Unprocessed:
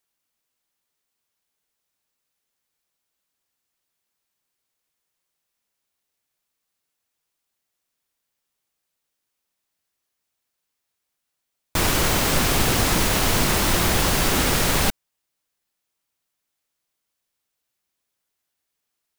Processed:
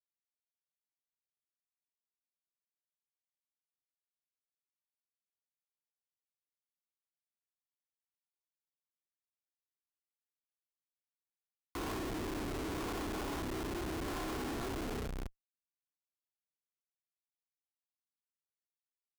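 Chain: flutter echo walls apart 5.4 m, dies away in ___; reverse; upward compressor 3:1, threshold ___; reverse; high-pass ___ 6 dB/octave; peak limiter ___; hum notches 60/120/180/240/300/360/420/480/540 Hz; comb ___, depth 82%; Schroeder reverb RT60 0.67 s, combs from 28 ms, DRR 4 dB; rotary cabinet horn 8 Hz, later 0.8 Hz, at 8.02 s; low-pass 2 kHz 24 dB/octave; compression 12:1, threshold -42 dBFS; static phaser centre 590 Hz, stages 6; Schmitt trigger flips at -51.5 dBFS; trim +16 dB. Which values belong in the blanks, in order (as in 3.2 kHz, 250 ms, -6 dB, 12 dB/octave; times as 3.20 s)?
0.3 s, -39 dBFS, 110 Hz, -17 dBFS, 2.8 ms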